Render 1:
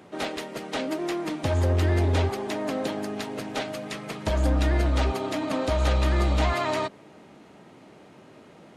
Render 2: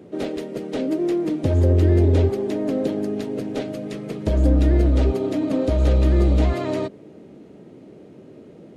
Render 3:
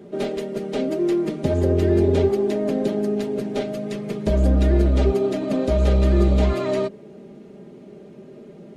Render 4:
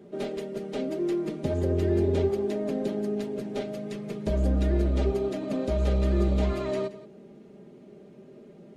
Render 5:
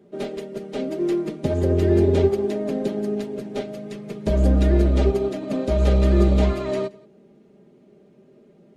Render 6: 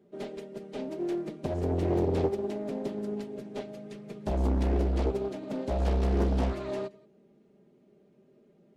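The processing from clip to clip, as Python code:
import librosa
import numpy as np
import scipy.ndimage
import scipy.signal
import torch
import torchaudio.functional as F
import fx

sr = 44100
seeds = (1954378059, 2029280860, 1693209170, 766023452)

y1 = fx.low_shelf_res(x, sr, hz=640.0, db=11.0, q=1.5)
y1 = y1 * librosa.db_to_amplitude(-5.0)
y2 = y1 + 0.65 * np.pad(y1, (int(5.0 * sr / 1000.0), 0))[:len(y1)]
y3 = y2 + 10.0 ** (-16.5 / 20.0) * np.pad(y2, (int(174 * sr / 1000.0), 0))[:len(y2)]
y3 = y3 * librosa.db_to_amplitude(-7.0)
y4 = fx.upward_expand(y3, sr, threshold_db=-44.0, expansion=1.5)
y4 = y4 * librosa.db_to_amplitude(8.0)
y5 = fx.doppler_dist(y4, sr, depth_ms=0.85)
y5 = y5 * librosa.db_to_amplitude(-9.0)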